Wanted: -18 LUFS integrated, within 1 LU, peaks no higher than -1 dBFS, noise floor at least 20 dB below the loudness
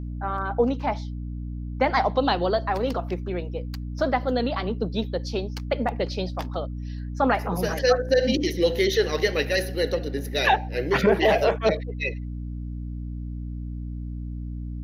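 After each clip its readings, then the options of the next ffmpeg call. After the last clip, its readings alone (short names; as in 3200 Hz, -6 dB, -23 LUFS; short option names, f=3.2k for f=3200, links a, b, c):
hum 60 Hz; harmonics up to 300 Hz; hum level -30 dBFS; loudness -25.5 LUFS; peak -8.0 dBFS; loudness target -18.0 LUFS
-> -af "bandreject=f=60:t=h:w=4,bandreject=f=120:t=h:w=4,bandreject=f=180:t=h:w=4,bandreject=f=240:t=h:w=4,bandreject=f=300:t=h:w=4"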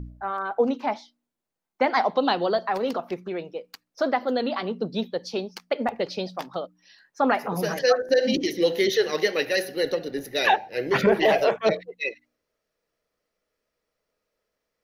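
hum none; loudness -25.0 LUFS; peak -8.5 dBFS; loudness target -18.0 LUFS
-> -af "volume=7dB"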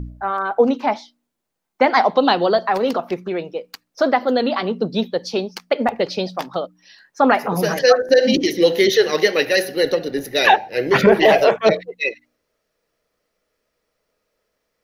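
loudness -18.0 LUFS; peak -1.5 dBFS; noise floor -75 dBFS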